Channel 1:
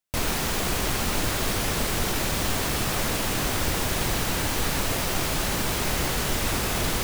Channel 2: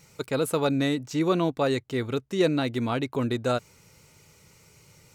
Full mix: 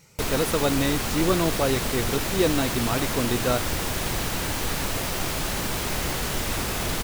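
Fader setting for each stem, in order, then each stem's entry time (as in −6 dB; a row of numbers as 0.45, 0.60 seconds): −1.5, +0.5 decibels; 0.05, 0.00 seconds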